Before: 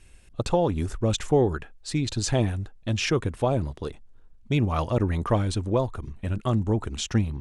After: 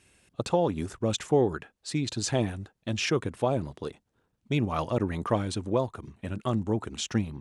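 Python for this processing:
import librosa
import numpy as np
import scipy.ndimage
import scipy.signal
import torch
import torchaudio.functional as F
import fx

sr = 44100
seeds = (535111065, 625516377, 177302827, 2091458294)

y = scipy.signal.sosfilt(scipy.signal.butter(2, 130.0, 'highpass', fs=sr, output='sos'), x)
y = F.gain(torch.from_numpy(y), -2.0).numpy()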